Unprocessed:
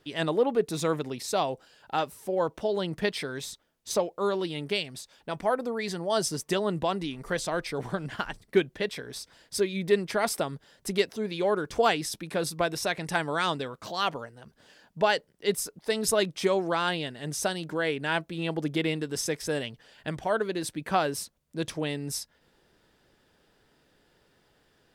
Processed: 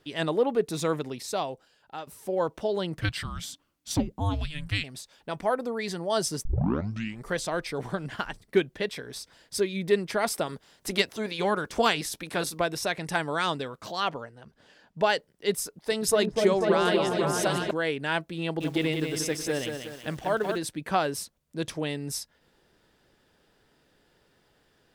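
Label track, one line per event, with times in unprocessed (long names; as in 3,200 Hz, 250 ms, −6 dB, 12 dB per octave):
0.980000	2.070000	fade out, to −12.5 dB
3.010000	4.840000	frequency shifter −310 Hz
6.450000	6.450000	tape start 0.80 s
10.450000	12.580000	ceiling on every frequency bin ceiling under each frame's peak by 12 dB
14.000000	14.990000	high-shelf EQ 7,300 Hz −10.5 dB
15.620000	17.710000	echo whose low-pass opens from repeat to repeat 246 ms, low-pass from 750 Hz, each repeat up 1 octave, level 0 dB
18.420000	20.580000	feedback echo at a low word length 185 ms, feedback 55%, word length 8 bits, level −5.5 dB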